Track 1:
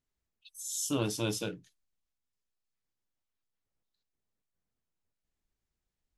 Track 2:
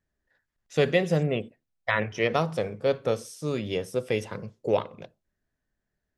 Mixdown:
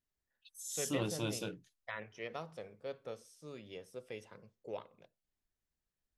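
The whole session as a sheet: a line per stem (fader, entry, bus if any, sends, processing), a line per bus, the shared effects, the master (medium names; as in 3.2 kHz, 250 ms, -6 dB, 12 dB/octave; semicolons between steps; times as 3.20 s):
-5.0 dB, 0.00 s, no send, none
-17.5 dB, 0.00 s, no send, bass shelf 240 Hz -6.5 dB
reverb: none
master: none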